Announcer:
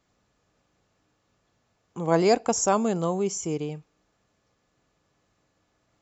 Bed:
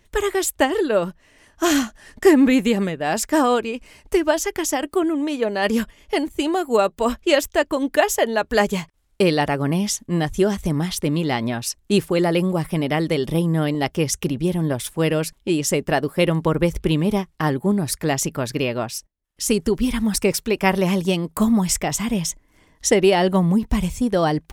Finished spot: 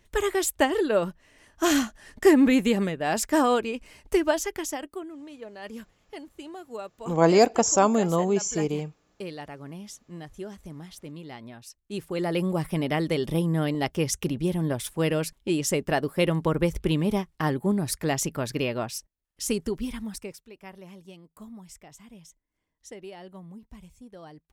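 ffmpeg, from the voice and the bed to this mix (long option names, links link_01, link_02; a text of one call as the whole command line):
ffmpeg -i stem1.wav -i stem2.wav -filter_complex "[0:a]adelay=5100,volume=2.5dB[link_01];[1:a]volume=10.5dB,afade=type=out:start_time=4.21:duration=0.86:silence=0.16788,afade=type=in:start_time=11.88:duration=0.65:silence=0.188365,afade=type=out:start_time=19.17:duration=1.24:silence=0.0841395[link_02];[link_01][link_02]amix=inputs=2:normalize=0" out.wav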